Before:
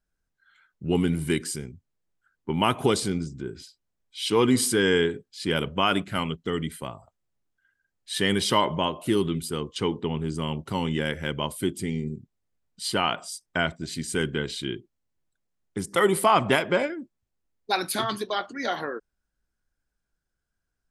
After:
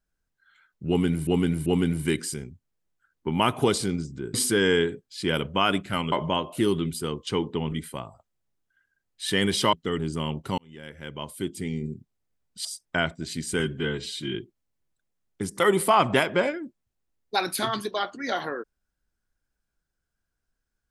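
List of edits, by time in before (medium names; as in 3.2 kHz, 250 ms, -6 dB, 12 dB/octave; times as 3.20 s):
0.88–1.27 s: loop, 3 plays
3.56–4.56 s: delete
6.34–6.60 s: swap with 8.61–10.21 s
10.80–12.15 s: fade in
12.87–13.26 s: delete
14.21–14.71 s: stretch 1.5×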